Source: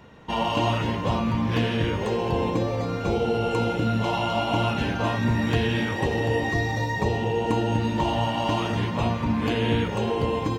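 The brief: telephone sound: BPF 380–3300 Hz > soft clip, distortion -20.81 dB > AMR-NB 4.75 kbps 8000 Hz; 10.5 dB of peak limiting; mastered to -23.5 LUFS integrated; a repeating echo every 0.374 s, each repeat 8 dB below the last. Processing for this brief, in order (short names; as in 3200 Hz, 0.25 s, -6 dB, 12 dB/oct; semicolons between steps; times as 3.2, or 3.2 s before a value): limiter -20 dBFS; BPF 380–3300 Hz; feedback echo 0.374 s, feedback 40%, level -8 dB; soft clip -23 dBFS; gain +12.5 dB; AMR-NB 4.75 kbps 8000 Hz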